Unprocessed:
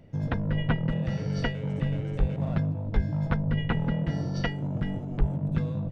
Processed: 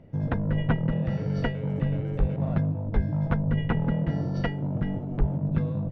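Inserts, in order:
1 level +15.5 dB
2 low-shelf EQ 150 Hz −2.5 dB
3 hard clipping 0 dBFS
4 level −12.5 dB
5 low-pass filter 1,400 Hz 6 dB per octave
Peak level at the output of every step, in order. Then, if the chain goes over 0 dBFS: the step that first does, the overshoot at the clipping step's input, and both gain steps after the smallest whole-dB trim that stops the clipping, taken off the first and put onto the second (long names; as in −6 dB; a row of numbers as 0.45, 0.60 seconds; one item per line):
+4.5, +3.5, 0.0, −12.5, −12.5 dBFS
step 1, 3.5 dB
step 1 +11.5 dB, step 4 −8.5 dB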